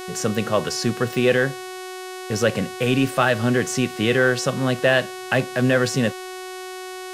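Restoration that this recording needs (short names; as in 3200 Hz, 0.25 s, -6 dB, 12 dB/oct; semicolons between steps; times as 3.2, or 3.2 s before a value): de-hum 370.7 Hz, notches 34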